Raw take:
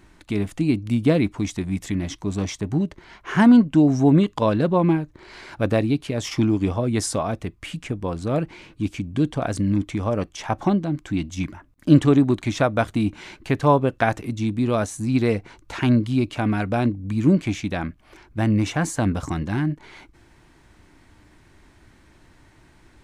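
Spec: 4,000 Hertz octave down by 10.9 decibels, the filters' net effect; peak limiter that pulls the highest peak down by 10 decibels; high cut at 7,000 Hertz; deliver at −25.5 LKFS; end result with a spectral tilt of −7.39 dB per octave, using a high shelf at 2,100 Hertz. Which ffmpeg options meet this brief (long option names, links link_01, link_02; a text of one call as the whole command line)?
ffmpeg -i in.wav -af "lowpass=7000,highshelf=frequency=2100:gain=-8,equalizer=frequency=4000:width_type=o:gain=-6.5,volume=-1dB,alimiter=limit=-13.5dB:level=0:latency=1" out.wav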